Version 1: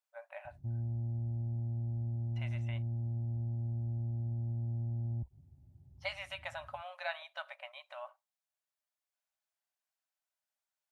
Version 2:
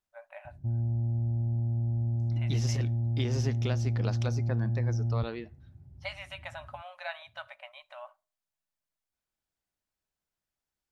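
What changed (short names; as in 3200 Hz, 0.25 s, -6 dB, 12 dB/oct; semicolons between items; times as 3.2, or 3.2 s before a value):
second voice: unmuted; background +7.0 dB; reverb: on, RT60 0.45 s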